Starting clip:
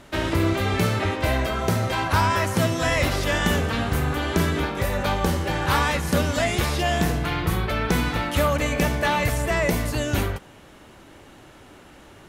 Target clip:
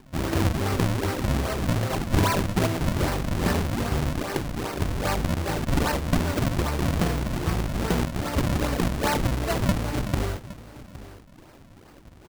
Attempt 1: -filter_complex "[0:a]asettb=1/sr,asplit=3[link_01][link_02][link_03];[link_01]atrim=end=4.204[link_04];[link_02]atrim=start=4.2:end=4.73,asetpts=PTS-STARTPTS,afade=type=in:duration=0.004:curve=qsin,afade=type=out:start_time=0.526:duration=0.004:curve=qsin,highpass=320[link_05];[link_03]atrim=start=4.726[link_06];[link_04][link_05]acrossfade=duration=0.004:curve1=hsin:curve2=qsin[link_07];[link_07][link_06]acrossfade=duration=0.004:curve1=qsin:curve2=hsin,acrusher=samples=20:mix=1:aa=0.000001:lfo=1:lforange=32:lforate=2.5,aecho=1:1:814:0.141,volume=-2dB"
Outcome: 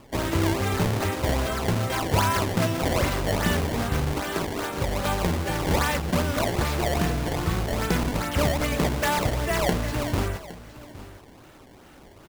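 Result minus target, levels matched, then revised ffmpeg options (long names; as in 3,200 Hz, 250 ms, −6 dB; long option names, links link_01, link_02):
sample-and-hold swept by an LFO: distortion −6 dB
-filter_complex "[0:a]asettb=1/sr,asplit=3[link_01][link_02][link_03];[link_01]atrim=end=4.204[link_04];[link_02]atrim=start=4.2:end=4.73,asetpts=PTS-STARTPTS,afade=type=in:duration=0.004:curve=qsin,afade=type=out:start_time=0.526:duration=0.004:curve=qsin,highpass=320[link_05];[link_03]atrim=start=4.726[link_06];[link_04][link_05]acrossfade=duration=0.004:curve1=hsin:curve2=qsin[link_07];[link_07][link_06]acrossfade=duration=0.004:curve1=qsin:curve2=hsin,acrusher=samples=62:mix=1:aa=0.000001:lfo=1:lforange=99.2:lforate=2.5,aecho=1:1:814:0.141,volume=-2dB"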